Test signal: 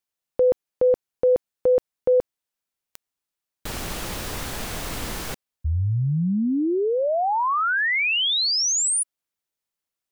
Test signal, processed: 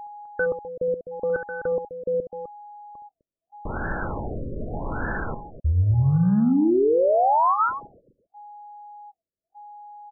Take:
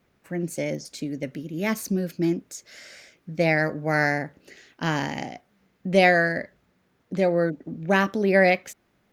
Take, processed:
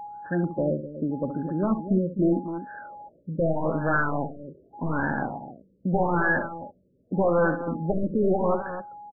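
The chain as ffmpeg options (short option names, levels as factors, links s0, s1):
-af "equalizer=f=1600:t=o:w=0.61:g=13.5,bandreject=f=1200:w=6.8,acontrast=25,highshelf=f=2300:g=-9,aeval=exprs='val(0)+0.0224*sin(2*PI*830*n/s)':c=same,aresample=16000,aeval=exprs='0.2*(abs(mod(val(0)/0.2+3,4)-2)-1)':c=same,aresample=44100,aecho=1:1:68|255:0.282|0.282,afftfilt=real='re*lt(b*sr/1024,590*pow(1800/590,0.5+0.5*sin(2*PI*0.83*pts/sr)))':imag='im*lt(b*sr/1024,590*pow(1800/590,0.5+0.5*sin(2*PI*0.83*pts/sr)))':win_size=1024:overlap=0.75,volume=0.794"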